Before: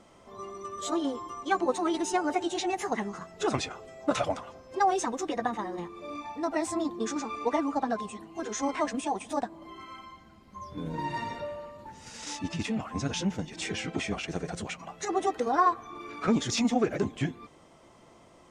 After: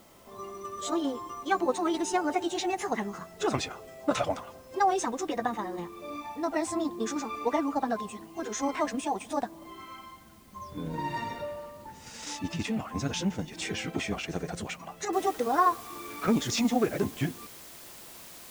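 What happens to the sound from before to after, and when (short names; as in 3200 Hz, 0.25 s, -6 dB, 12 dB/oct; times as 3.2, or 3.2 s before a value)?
15.13 noise floor step -62 dB -48 dB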